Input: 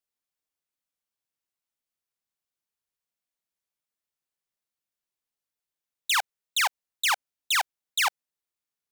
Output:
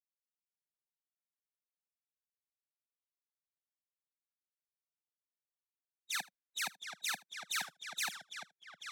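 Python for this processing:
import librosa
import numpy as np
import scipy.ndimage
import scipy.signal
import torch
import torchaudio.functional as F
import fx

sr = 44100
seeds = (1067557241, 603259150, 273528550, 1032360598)

p1 = fx.lower_of_two(x, sr, delay_ms=0.49)
p2 = scipy.signal.sosfilt(scipy.signal.cheby1(3, 1.0, 170.0, 'highpass', fs=sr, output='sos'), p1)
p3 = fx.echo_pitch(p2, sr, ms=361, semitones=-1, count=2, db_per_echo=-6.0)
p4 = fx.dynamic_eq(p3, sr, hz=2000.0, q=2.7, threshold_db=-41.0, ratio=4.0, max_db=-6)
p5 = fx.env_lowpass(p4, sr, base_hz=2500.0, full_db=-25.0)
p6 = p5 + fx.echo_single(p5, sr, ms=80, db=-22.0, dry=0)
p7 = fx.pitch_keep_formants(p6, sr, semitones=2.0)
p8 = fx.band_widen(p7, sr, depth_pct=40)
y = F.gain(torch.from_numpy(p8), -6.5).numpy()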